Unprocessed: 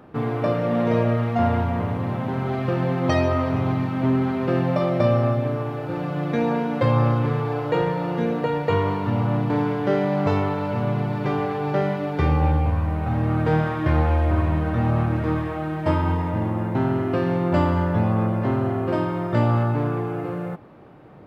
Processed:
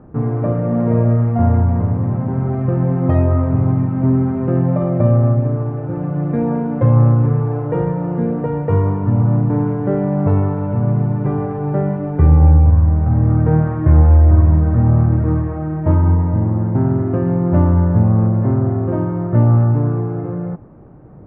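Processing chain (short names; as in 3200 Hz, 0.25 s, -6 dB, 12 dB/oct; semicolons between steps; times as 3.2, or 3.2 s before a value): Chebyshev low-pass 1600 Hz, order 2; tilt -4 dB/oct; gain -2 dB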